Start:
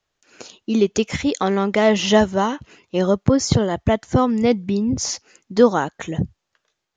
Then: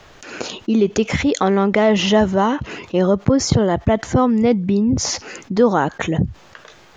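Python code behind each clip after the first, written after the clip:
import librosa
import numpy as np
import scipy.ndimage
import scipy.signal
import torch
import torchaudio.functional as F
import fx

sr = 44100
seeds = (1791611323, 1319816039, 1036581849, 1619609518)

y = fx.high_shelf(x, sr, hz=3900.0, db=-11.5)
y = fx.env_flatten(y, sr, amount_pct=50)
y = y * 10.0 ** (-1.5 / 20.0)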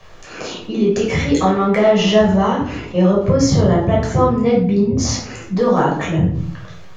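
y = np.clip(x, -10.0 ** (-5.0 / 20.0), 10.0 ** (-5.0 / 20.0))
y = fx.room_shoebox(y, sr, seeds[0], volume_m3=760.0, walls='furnished', distance_m=5.8)
y = y * 10.0 ** (-7.0 / 20.0)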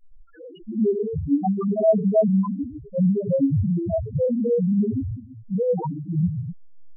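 y = fx.spec_topn(x, sr, count=1)
y = y * 10.0 ** (1.0 / 20.0)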